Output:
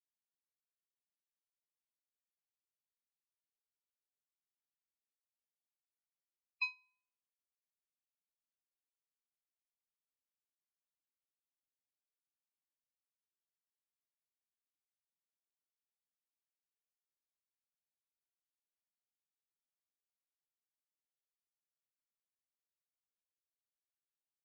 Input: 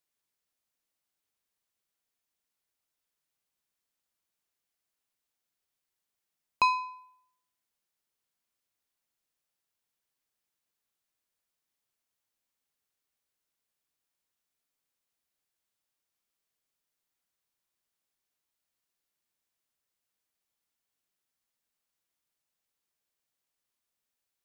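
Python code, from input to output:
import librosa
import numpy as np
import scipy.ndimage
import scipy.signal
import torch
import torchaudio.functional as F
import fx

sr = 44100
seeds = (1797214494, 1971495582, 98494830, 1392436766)

y = fx.spec_topn(x, sr, count=32)
y = fx.vowel_filter(y, sr, vowel='i')
y = fx.upward_expand(y, sr, threshold_db=-55.0, expansion=2.5)
y = y * librosa.db_to_amplitude(10.0)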